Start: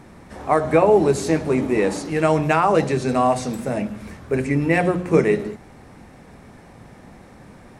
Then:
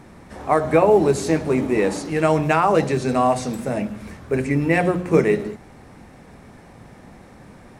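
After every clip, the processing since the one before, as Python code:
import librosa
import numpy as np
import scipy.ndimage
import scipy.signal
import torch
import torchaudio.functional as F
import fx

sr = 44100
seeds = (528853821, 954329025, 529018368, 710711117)

y = fx.quant_float(x, sr, bits=6)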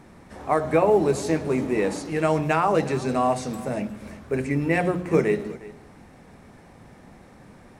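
y = fx.hum_notches(x, sr, base_hz=60, count=2)
y = y + 10.0 ** (-19.0 / 20.0) * np.pad(y, (int(358 * sr / 1000.0), 0))[:len(y)]
y = y * 10.0 ** (-4.0 / 20.0)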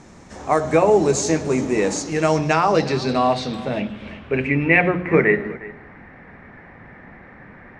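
y = fx.filter_sweep_lowpass(x, sr, from_hz=6700.0, to_hz=1900.0, start_s=2.06, end_s=5.33, q=3.9)
y = y * 10.0 ** (3.5 / 20.0)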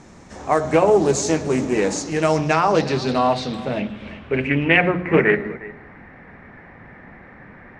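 y = fx.doppler_dist(x, sr, depth_ms=0.22)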